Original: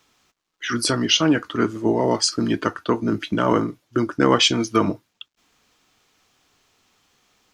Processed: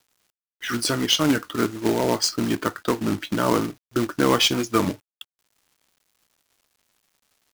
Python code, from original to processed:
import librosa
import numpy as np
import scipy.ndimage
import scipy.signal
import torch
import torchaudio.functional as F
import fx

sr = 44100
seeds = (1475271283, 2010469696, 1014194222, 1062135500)

y = fx.quant_companded(x, sr, bits=4)
y = fx.record_warp(y, sr, rpm=33.33, depth_cents=100.0)
y = F.gain(torch.from_numpy(y), -2.5).numpy()